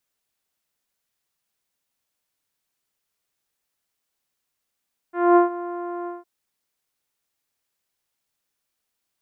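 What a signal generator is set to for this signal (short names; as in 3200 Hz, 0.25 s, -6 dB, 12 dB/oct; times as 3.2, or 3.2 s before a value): synth note saw F4 24 dB/oct, low-pass 1200 Hz, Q 1.2, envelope 0.5 oct, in 0.16 s, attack 0.231 s, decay 0.13 s, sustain -17.5 dB, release 0.17 s, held 0.94 s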